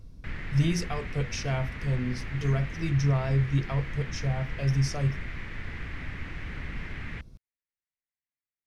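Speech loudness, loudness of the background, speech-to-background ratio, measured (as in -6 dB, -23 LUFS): -29.0 LUFS, -39.0 LUFS, 10.0 dB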